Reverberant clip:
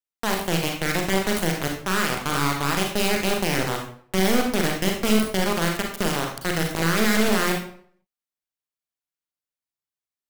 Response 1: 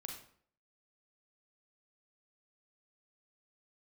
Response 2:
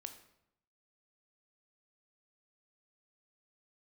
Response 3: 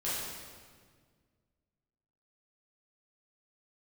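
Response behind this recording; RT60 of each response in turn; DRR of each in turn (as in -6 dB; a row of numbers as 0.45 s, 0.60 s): 1; 0.55 s, 0.80 s, 1.7 s; 1.0 dB, 7.0 dB, -10.5 dB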